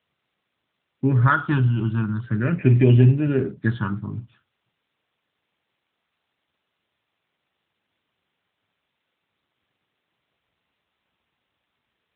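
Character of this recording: phasing stages 6, 0.42 Hz, lowest notch 500–1300 Hz; a quantiser's noise floor 12-bit, dither triangular; AMR-NB

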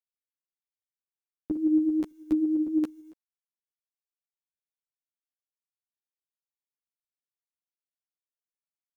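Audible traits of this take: a quantiser's noise floor 12-bit, dither none; tremolo saw up 9 Hz, depth 35%; a shimmering, thickened sound

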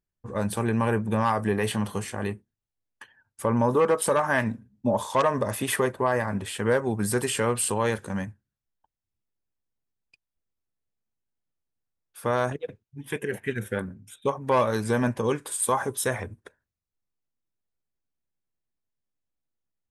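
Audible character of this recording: noise floor -88 dBFS; spectral tilt -5.0 dB/oct

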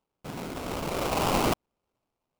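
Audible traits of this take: phasing stages 2, 1 Hz, lowest notch 650–4800 Hz; aliases and images of a low sample rate 1800 Hz, jitter 20%

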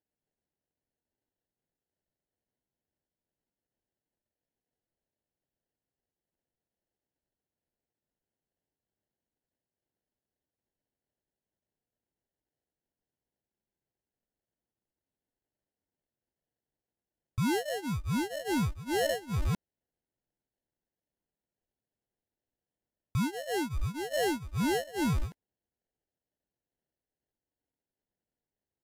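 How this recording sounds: phasing stages 2, 2.3 Hz, lowest notch 280–3300 Hz; aliases and images of a low sample rate 1200 Hz, jitter 0%; Vorbis

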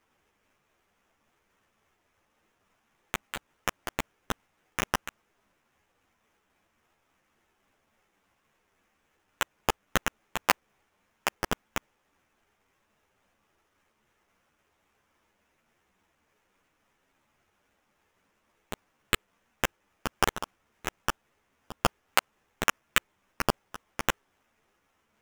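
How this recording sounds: phasing stages 2, 3.6 Hz, lowest notch 800–4100 Hz; aliases and images of a low sample rate 4400 Hz, jitter 20%; a shimmering, thickened sound

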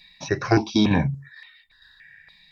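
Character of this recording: tremolo saw down 2.2 Hz, depth 50%; notches that jump at a steady rate 3.5 Hz 410–1700 Hz

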